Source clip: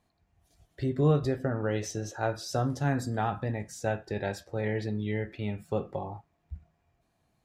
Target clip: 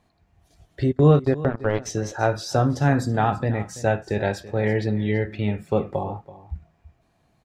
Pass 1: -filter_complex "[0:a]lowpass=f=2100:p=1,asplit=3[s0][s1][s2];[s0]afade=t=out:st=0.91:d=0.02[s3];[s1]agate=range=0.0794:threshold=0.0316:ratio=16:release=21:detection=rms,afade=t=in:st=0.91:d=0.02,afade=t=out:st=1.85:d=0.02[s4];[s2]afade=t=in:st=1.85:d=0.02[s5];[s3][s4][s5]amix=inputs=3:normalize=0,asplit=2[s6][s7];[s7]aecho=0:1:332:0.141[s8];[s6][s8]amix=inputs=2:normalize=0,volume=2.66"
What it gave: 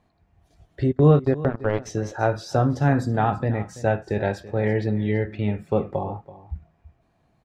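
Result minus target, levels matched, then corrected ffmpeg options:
8 kHz band -6.5 dB
-filter_complex "[0:a]lowpass=f=5700:p=1,asplit=3[s0][s1][s2];[s0]afade=t=out:st=0.91:d=0.02[s3];[s1]agate=range=0.0794:threshold=0.0316:ratio=16:release=21:detection=rms,afade=t=in:st=0.91:d=0.02,afade=t=out:st=1.85:d=0.02[s4];[s2]afade=t=in:st=1.85:d=0.02[s5];[s3][s4][s5]amix=inputs=3:normalize=0,asplit=2[s6][s7];[s7]aecho=0:1:332:0.141[s8];[s6][s8]amix=inputs=2:normalize=0,volume=2.66"

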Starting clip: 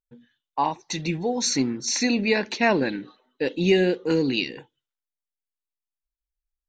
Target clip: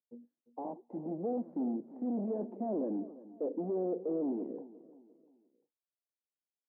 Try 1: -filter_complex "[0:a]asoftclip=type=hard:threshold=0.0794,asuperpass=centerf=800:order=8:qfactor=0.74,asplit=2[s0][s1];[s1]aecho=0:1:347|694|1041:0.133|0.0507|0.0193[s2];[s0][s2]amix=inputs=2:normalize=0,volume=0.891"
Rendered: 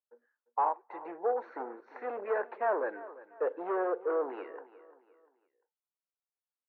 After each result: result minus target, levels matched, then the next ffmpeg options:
1 kHz band +10.5 dB; hard clipper: distortion -4 dB
-filter_complex "[0:a]asoftclip=type=hard:threshold=0.0794,asuperpass=centerf=380:order=8:qfactor=0.74,asplit=2[s0][s1];[s1]aecho=0:1:347|694|1041:0.133|0.0507|0.0193[s2];[s0][s2]amix=inputs=2:normalize=0,volume=0.891"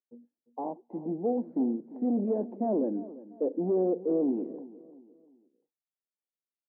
hard clipper: distortion -4 dB
-filter_complex "[0:a]asoftclip=type=hard:threshold=0.0316,asuperpass=centerf=380:order=8:qfactor=0.74,asplit=2[s0][s1];[s1]aecho=0:1:347|694|1041:0.133|0.0507|0.0193[s2];[s0][s2]amix=inputs=2:normalize=0,volume=0.891"

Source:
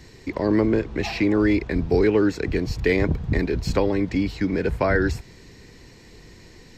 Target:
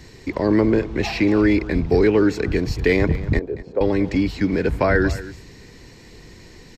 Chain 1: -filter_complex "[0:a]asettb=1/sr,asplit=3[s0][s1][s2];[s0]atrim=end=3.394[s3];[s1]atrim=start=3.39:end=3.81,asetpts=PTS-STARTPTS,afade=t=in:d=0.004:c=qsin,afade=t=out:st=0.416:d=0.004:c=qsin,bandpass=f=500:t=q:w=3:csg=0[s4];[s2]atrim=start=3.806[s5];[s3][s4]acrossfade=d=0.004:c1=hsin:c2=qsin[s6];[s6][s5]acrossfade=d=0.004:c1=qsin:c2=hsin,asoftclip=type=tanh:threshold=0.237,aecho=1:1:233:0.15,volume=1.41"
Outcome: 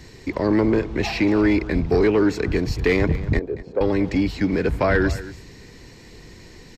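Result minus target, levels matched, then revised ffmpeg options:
saturation: distortion +16 dB
-filter_complex "[0:a]asettb=1/sr,asplit=3[s0][s1][s2];[s0]atrim=end=3.394[s3];[s1]atrim=start=3.39:end=3.81,asetpts=PTS-STARTPTS,afade=t=in:d=0.004:c=qsin,afade=t=out:st=0.416:d=0.004:c=qsin,bandpass=f=500:t=q:w=3:csg=0[s4];[s2]atrim=start=3.806[s5];[s3][s4]acrossfade=d=0.004:c1=hsin:c2=qsin[s6];[s6][s5]acrossfade=d=0.004:c1=qsin:c2=hsin,asoftclip=type=tanh:threshold=0.708,aecho=1:1:233:0.15,volume=1.41"

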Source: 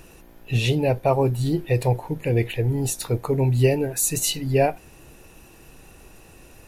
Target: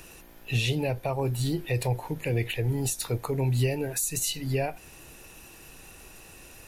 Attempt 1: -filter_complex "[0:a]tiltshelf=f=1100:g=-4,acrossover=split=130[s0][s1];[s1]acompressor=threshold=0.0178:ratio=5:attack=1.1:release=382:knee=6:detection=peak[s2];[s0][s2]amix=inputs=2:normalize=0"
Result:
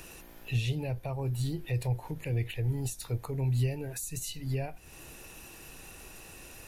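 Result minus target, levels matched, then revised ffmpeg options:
compression: peak gain reduction +9.5 dB
-filter_complex "[0:a]tiltshelf=f=1100:g=-4,acrossover=split=130[s0][s1];[s1]acompressor=threshold=0.0708:ratio=5:attack=1.1:release=382:knee=6:detection=peak[s2];[s0][s2]amix=inputs=2:normalize=0"

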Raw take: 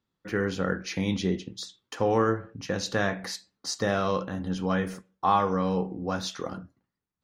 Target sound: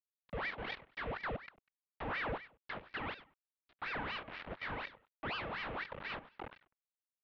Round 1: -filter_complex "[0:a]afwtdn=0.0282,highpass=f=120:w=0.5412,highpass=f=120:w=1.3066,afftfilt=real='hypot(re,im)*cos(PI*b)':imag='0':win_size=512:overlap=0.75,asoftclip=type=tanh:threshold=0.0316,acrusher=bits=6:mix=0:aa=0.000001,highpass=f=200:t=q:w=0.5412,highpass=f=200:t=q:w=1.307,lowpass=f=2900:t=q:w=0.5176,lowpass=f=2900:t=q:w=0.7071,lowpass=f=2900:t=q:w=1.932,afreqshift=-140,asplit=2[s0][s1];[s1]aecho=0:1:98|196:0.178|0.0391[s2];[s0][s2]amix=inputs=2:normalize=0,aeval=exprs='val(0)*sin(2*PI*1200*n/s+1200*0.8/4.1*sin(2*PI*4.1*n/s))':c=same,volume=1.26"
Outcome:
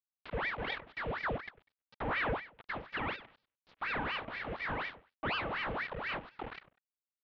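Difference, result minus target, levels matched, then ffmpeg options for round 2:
saturation: distortion -6 dB
-filter_complex "[0:a]afwtdn=0.0282,highpass=f=120:w=0.5412,highpass=f=120:w=1.3066,afftfilt=real='hypot(re,im)*cos(PI*b)':imag='0':win_size=512:overlap=0.75,asoftclip=type=tanh:threshold=0.00841,acrusher=bits=6:mix=0:aa=0.000001,highpass=f=200:t=q:w=0.5412,highpass=f=200:t=q:w=1.307,lowpass=f=2900:t=q:w=0.5176,lowpass=f=2900:t=q:w=0.7071,lowpass=f=2900:t=q:w=1.932,afreqshift=-140,asplit=2[s0][s1];[s1]aecho=0:1:98|196:0.178|0.0391[s2];[s0][s2]amix=inputs=2:normalize=0,aeval=exprs='val(0)*sin(2*PI*1200*n/s+1200*0.8/4.1*sin(2*PI*4.1*n/s))':c=same,volume=1.26"

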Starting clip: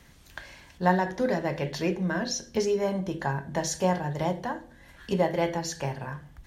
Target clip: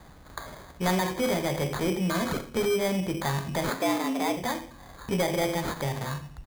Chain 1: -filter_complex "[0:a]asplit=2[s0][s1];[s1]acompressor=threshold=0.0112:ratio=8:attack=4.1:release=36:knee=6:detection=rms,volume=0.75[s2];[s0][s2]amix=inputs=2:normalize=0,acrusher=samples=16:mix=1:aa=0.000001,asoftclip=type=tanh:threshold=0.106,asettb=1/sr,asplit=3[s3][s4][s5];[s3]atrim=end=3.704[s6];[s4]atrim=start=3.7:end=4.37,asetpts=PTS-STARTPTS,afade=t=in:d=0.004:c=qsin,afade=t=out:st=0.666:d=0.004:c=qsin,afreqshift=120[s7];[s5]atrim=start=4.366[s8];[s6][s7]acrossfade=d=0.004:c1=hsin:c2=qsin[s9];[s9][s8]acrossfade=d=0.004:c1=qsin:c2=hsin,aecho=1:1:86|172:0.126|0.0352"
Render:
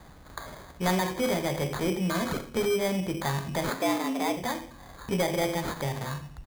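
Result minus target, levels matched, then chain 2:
compression: peak gain reduction +6 dB
-filter_complex "[0:a]asplit=2[s0][s1];[s1]acompressor=threshold=0.0251:ratio=8:attack=4.1:release=36:knee=6:detection=rms,volume=0.75[s2];[s0][s2]amix=inputs=2:normalize=0,acrusher=samples=16:mix=1:aa=0.000001,asoftclip=type=tanh:threshold=0.106,asettb=1/sr,asplit=3[s3][s4][s5];[s3]atrim=end=3.704[s6];[s4]atrim=start=3.7:end=4.37,asetpts=PTS-STARTPTS,afade=t=in:d=0.004:c=qsin,afade=t=out:st=0.666:d=0.004:c=qsin,afreqshift=120[s7];[s5]atrim=start=4.366[s8];[s6][s7]acrossfade=d=0.004:c1=hsin:c2=qsin[s9];[s9][s8]acrossfade=d=0.004:c1=qsin:c2=hsin,aecho=1:1:86|172:0.126|0.0352"

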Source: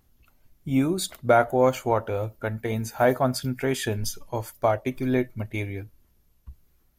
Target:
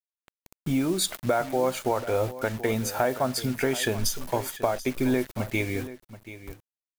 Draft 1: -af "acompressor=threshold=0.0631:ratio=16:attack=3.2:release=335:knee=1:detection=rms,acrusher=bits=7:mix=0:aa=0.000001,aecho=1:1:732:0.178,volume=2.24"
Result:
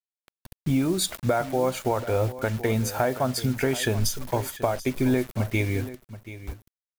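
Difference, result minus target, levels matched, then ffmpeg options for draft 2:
125 Hz band +4.5 dB
-af "acompressor=threshold=0.0631:ratio=16:attack=3.2:release=335:knee=1:detection=rms,equalizer=f=69:w=0.63:g=-9,acrusher=bits=7:mix=0:aa=0.000001,aecho=1:1:732:0.178,volume=2.24"

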